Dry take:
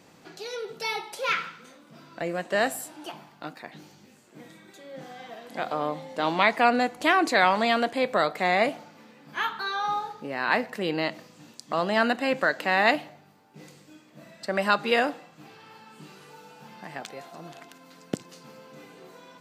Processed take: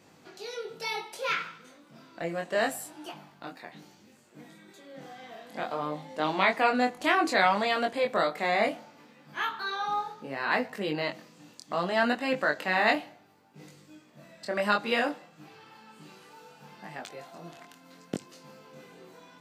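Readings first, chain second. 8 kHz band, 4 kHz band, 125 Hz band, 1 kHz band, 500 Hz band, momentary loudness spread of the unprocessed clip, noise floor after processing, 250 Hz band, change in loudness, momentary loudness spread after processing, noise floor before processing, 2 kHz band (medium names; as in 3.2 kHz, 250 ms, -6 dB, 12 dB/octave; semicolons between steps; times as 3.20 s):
-3.0 dB, -3.0 dB, -2.5 dB, -3.0 dB, -3.0 dB, 21 LU, -58 dBFS, -3.0 dB, -3.0 dB, 20 LU, -56 dBFS, -3.0 dB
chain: chorus 0.65 Hz, delay 19.5 ms, depth 4.6 ms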